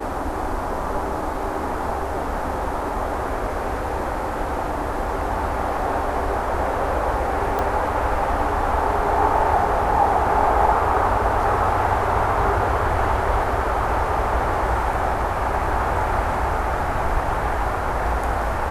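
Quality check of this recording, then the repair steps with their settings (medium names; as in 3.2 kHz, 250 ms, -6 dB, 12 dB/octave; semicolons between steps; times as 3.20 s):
7.59 s: pop -11 dBFS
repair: de-click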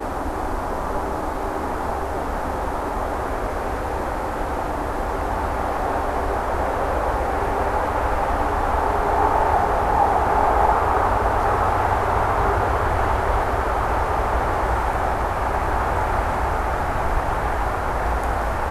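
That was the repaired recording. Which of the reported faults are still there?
nothing left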